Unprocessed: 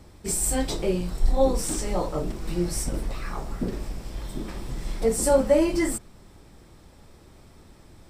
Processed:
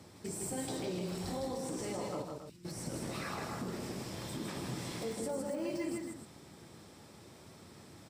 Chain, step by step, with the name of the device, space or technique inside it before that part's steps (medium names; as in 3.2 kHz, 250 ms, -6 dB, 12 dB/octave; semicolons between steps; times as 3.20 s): broadcast voice chain (high-pass 100 Hz 24 dB/octave; de-esser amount 95%; compression 4:1, threshold -30 dBFS, peak gain reduction 13 dB; peaking EQ 5.9 kHz +3 dB 1.9 oct; peak limiter -28.5 dBFS, peak gain reduction 8 dB); 2.22–2.65 s: amplifier tone stack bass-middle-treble 6-0-2; loudspeakers at several distances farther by 54 m -4 dB, 94 m -9 dB; trim -3 dB